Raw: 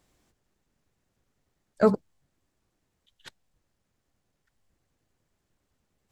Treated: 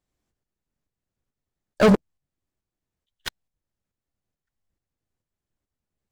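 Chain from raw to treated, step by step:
low-shelf EQ 140 Hz +4 dB
leveller curve on the samples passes 5
shaped tremolo saw up 2.3 Hz, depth 50%

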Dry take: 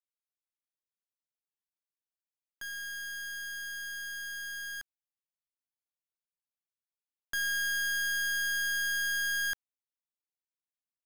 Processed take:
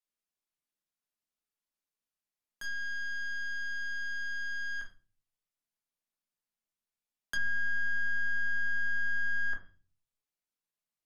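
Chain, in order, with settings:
0:04.79–0:07.34: frequency shifter −15 Hz
rectangular room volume 250 cubic metres, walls furnished, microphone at 1.4 metres
treble cut that deepens with the level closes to 1,400 Hz, closed at −26.5 dBFS

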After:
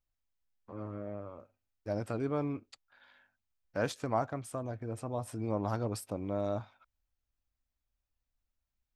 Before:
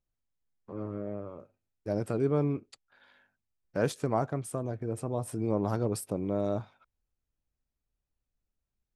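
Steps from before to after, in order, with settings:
graphic EQ with 15 bands 160 Hz −10 dB, 400 Hz −8 dB, 10,000 Hz −8 dB

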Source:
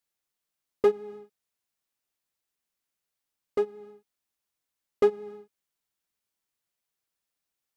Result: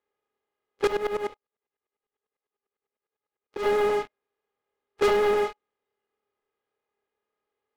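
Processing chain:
compressor on every frequency bin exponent 0.4
drawn EQ curve 110 Hz 0 dB, 170 Hz −10 dB, 970 Hz −3 dB
flutter between parallel walls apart 4.7 metres, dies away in 0.31 s
noise reduction from a noise print of the clip's start 18 dB
low-pass filter 3,000 Hz
low-shelf EQ 140 Hz −11 dB
leveller curve on the samples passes 5
0:00.87–0:03.66: tremolo with a ramp in dB swelling 10 Hz, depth 18 dB

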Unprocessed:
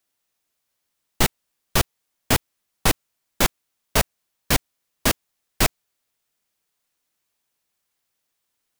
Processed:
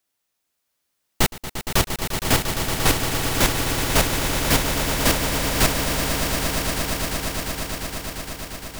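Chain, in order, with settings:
echo that builds up and dies away 116 ms, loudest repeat 8, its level −9 dB

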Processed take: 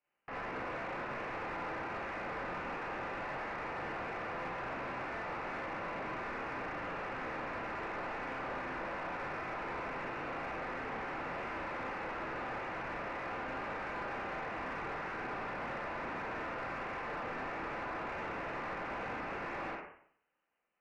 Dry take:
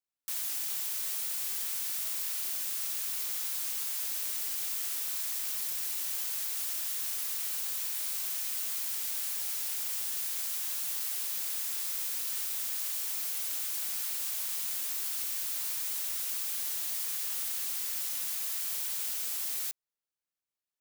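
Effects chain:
four-comb reverb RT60 0.59 s, combs from 31 ms, DRR −5.5 dB
voice inversion scrambler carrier 3,000 Hz
mid-hump overdrive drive 19 dB, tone 1,000 Hz, clips at −31.5 dBFS
level +2.5 dB

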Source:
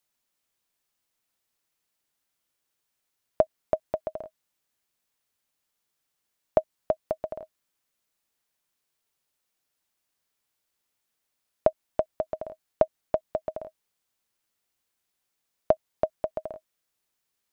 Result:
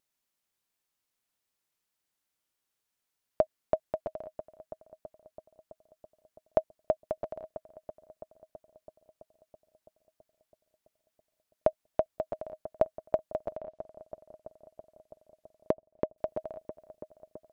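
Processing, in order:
0:13.53–0:16.18: treble cut that deepens with the level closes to 500 Hz, closed at −28.5 dBFS
feedback echo with a low-pass in the loop 330 ms, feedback 77%, low-pass 2,000 Hz, level −15 dB
pitch vibrato 1.1 Hz 11 cents
level −4 dB

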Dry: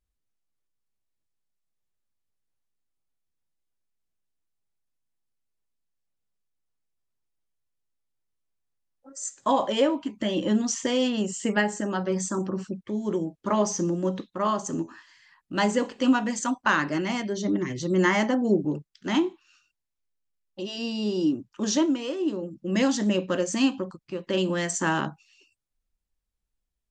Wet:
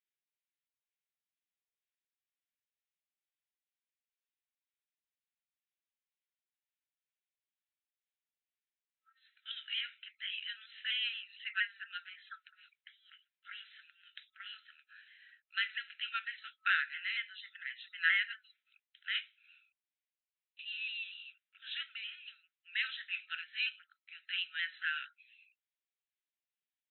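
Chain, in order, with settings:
pitch shifter swept by a sawtooth −1.5 semitones, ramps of 232 ms
phaser with its sweep stopped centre 2,500 Hz, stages 4
brick-wall band-pass 1,300–4,100 Hz

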